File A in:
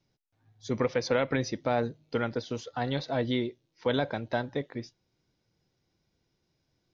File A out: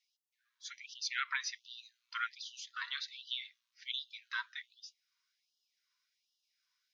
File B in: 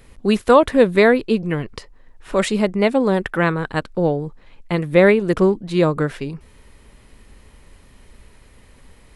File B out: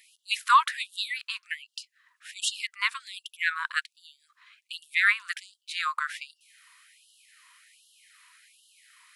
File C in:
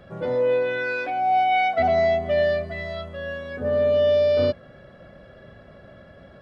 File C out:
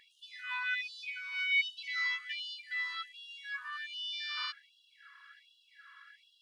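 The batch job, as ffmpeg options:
-af "afftfilt=real='re*gte(b*sr/1024,930*pow(2800/930,0.5+0.5*sin(2*PI*1.3*pts/sr)))':imag='im*gte(b*sr/1024,930*pow(2800/930,0.5+0.5*sin(2*PI*1.3*pts/sr)))':win_size=1024:overlap=0.75"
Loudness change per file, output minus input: −9.5, −10.0, −13.0 LU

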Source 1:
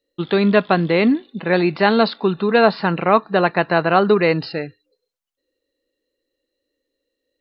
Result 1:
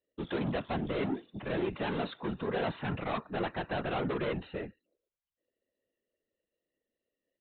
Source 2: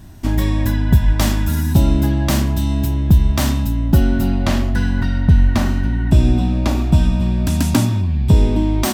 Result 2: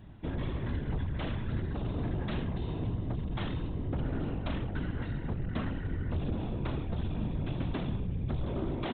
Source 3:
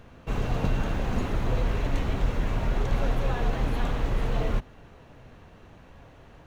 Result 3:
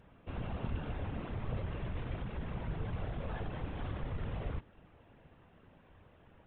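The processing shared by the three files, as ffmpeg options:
-af "aresample=8000,asoftclip=type=tanh:threshold=-19.5dB,aresample=44100,afftfilt=real='hypot(re,im)*cos(2*PI*random(0))':imag='hypot(re,im)*sin(2*PI*random(1))':win_size=512:overlap=0.75,volume=-4.5dB"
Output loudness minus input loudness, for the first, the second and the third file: −17.5, −18.5, −11.5 LU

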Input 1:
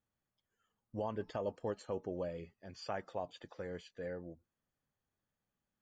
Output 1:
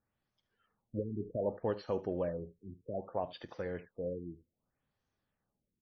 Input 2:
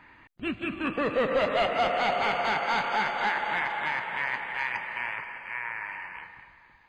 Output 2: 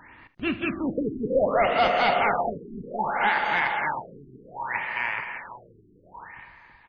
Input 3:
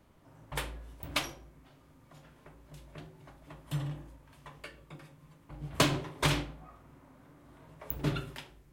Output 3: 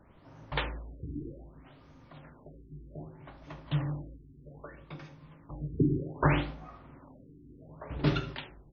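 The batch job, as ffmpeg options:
-af "aecho=1:1:46|75:0.126|0.133,afftfilt=real='re*lt(b*sr/1024,420*pow(6700/420,0.5+0.5*sin(2*PI*0.64*pts/sr)))':imag='im*lt(b*sr/1024,420*pow(6700/420,0.5+0.5*sin(2*PI*0.64*pts/sr)))':win_size=1024:overlap=0.75,volume=4.5dB"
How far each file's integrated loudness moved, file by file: +4.0, +3.0, +1.5 LU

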